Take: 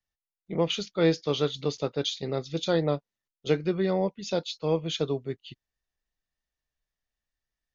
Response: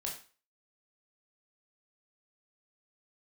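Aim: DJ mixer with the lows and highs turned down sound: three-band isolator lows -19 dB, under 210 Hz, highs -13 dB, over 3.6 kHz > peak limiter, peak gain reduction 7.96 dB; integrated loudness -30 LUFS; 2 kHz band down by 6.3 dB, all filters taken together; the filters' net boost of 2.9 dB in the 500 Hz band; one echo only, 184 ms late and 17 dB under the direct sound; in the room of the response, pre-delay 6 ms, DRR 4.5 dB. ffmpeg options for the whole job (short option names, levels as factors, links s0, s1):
-filter_complex "[0:a]equalizer=f=500:t=o:g=4,equalizer=f=2000:t=o:g=-8,aecho=1:1:184:0.141,asplit=2[s0][s1];[1:a]atrim=start_sample=2205,adelay=6[s2];[s1][s2]afir=irnorm=-1:irlink=0,volume=0.562[s3];[s0][s3]amix=inputs=2:normalize=0,acrossover=split=210 3600:gain=0.112 1 0.224[s4][s5][s6];[s4][s5][s6]amix=inputs=3:normalize=0,volume=0.891,alimiter=limit=0.133:level=0:latency=1"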